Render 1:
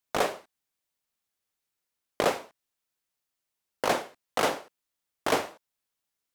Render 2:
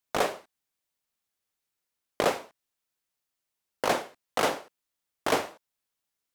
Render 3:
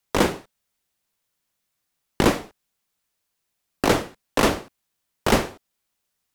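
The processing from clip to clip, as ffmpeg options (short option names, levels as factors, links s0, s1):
-af anull
-af "afreqshift=-230,volume=2.24"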